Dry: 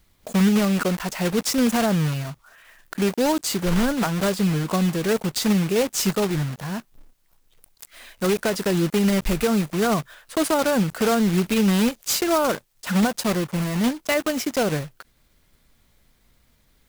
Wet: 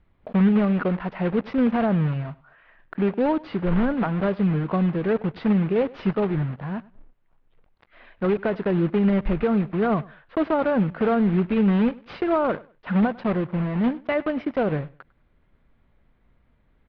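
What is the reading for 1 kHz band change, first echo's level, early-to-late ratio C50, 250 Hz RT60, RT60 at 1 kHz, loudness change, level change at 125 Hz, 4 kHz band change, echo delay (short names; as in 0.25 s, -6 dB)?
-1.5 dB, -22.0 dB, none, none, none, -1.0 dB, 0.0 dB, -15.5 dB, 0.1 s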